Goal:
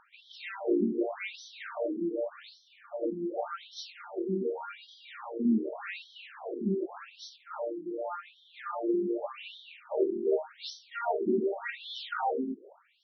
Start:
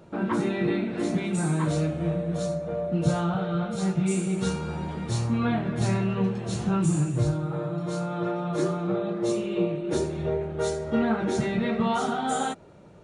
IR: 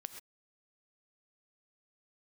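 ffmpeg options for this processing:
-filter_complex "[0:a]asettb=1/sr,asplit=3[link_01][link_02][link_03];[link_01]atrim=end=7.364[link_04];[link_02]atrim=start=7.36:end=8.71,asetpts=PTS-STARTPTS,afade=type=in:duration=0.004:curve=qsin,afade=type=out:start_time=1.346:duration=0.004:curve=qsin,bass=frequency=250:gain=-13,treble=frequency=4000:gain=-14[link_05];[link_03]atrim=start=8.706[link_06];[link_04][link_05]acrossfade=duration=0.004:curve1=hsin:curve2=qsin[link_07];[link_07][link_06]acrossfade=duration=0.004:curve1=qsin:curve2=hsin,afftfilt=real='re*between(b*sr/1024,280*pow(4400/280,0.5+0.5*sin(2*PI*0.86*pts/sr))/1.41,280*pow(4400/280,0.5+0.5*sin(2*PI*0.86*pts/sr))*1.41)':imag='im*between(b*sr/1024,280*pow(4400/280,0.5+0.5*sin(2*PI*0.86*pts/sr))/1.41,280*pow(4400/280,0.5+0.5*sin(2*PI*0.86*pts/sr))*1.41)':win_size=1024:overlap=0.75,volume=2.5dB"

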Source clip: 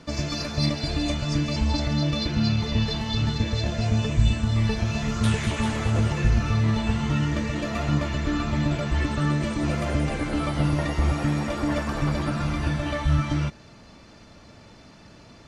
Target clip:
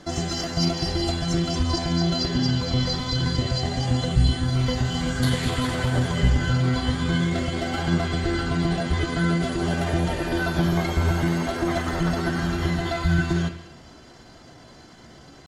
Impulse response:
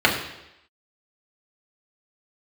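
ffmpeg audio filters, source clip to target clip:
-filter_complex "[0:a]asetrate=50951,aresample=44100,atempo=0.865537,asplit=2[link_01][link_02];[1:a]atrim=start_sample=2205,highshelf=frequency=3400:gain=11.5[link_03];[link_02][link_03]afir=irnorm=-1:irlink=0,volume=-26dB[link_04];[link_01][link_04]amix=inputs=2:normalize=0"

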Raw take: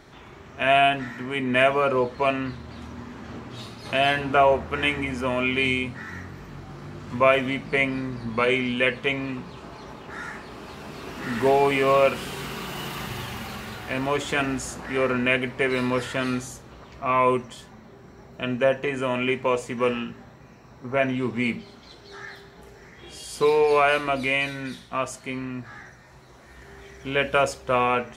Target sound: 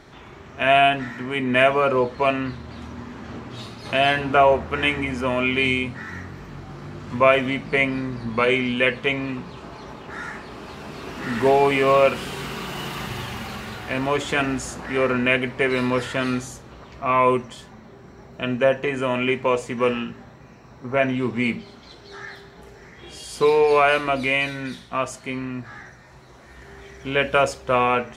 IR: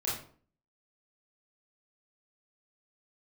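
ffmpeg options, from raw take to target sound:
-af "highshelf=frequency=11000:gain=-7,volume=2.5dB"

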